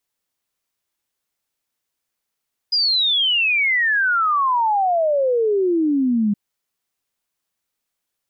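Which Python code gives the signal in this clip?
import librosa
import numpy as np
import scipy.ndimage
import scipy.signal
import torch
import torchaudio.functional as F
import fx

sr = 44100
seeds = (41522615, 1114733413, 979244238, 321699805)

y = fx.ess(sr, length_s=3.62, from_hz=5000.0, to_hz=200.0, level_db=-15.0)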